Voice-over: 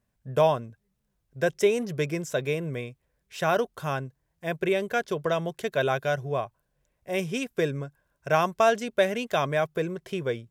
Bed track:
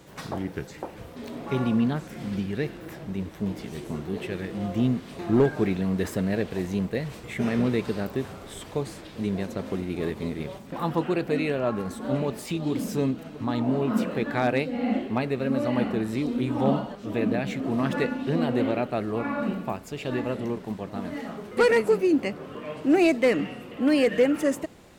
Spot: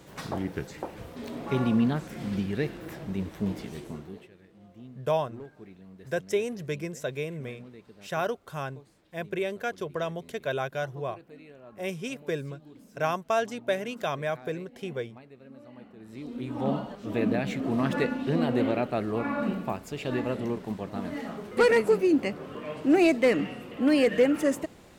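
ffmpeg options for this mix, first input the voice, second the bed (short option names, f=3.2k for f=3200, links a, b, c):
-filter_complex "[0:a]adelay=4700,volume=-5dB[a];[1:a]volume=22dB,afade=t=out:st=3.52:d=0.78:silence=0.0707946,afade=t=in:st=15.97:d=1.23:silence=0.0749894[b];[a][b]amix=inputs=2:normalize=0"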